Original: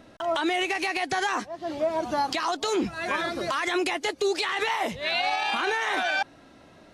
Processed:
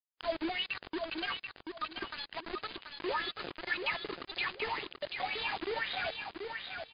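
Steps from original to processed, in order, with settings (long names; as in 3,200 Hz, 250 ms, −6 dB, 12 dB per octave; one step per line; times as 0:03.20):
0:00.70–0:02.34: lower of the sound and its delayed copy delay 0.72 ms
LFO wah 1.9 Hz 290–3,900 Hz, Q 5.2
0:02.92–0:03.77: comb filter 2.3 ms, depth 99%
in parallel at −2 dB: downward compressor 8 to 1, threshold −46 dBFS, peak gain reduction 19 dB
on the sum: bit reduction 6 bits
dynamic equaliser 880 Hz, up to −3 dB, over −44 dBFS, Q 0.85
on a send: repeating echo 734 ms, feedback 23%, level −5.5 dB
on the sum: MP3 40 kbit/s 11,025 Hz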